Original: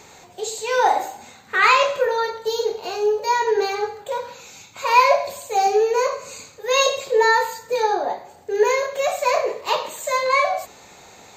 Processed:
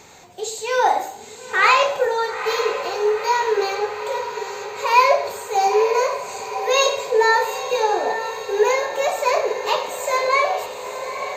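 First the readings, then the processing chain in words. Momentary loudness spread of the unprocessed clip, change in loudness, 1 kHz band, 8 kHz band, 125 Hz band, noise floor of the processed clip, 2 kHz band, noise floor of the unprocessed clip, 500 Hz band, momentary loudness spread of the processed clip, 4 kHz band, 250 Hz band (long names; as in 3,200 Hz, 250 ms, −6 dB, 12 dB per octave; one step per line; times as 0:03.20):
14 LU, 0.0 dB, +0.5 dB, +0.5 dB, can't be measured, −38 dBFS, +0.5 dB, −47 dBFS, +0.5 dB, 12 LU, +0.5 dB, +0.5 dB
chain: feedback delay with all-pass diffusion 909 ms, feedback 62%, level −10 dB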